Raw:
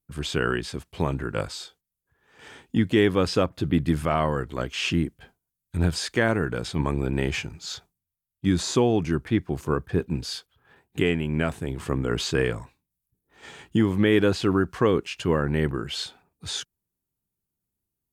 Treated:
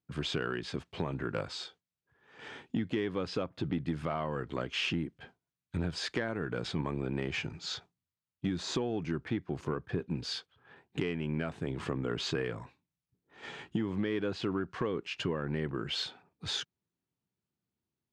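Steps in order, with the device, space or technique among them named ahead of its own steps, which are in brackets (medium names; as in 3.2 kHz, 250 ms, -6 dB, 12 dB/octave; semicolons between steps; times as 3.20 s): AM radio (band-pass 110–4500 Hz; compression 6:1, threshold -29 dBFS, peak gain reduction 13.5 dB; saturation -19 dBFS, distortion -23 dB)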